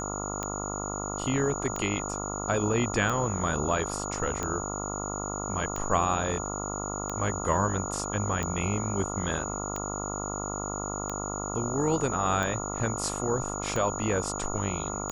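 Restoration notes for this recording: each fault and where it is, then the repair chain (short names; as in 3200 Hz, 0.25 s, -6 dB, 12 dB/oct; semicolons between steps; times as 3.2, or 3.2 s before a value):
buzz 50 Hz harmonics 28 -35 dBFS
tick 45 rpm -17 dBFS
tone 6800 Hz -36 dBFS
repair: de-click; notch 6800 Hz, Q 30; de-hum 50 Hz, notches 28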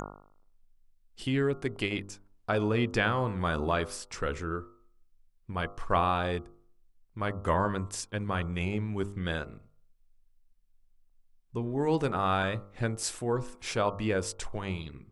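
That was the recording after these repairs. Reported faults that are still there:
none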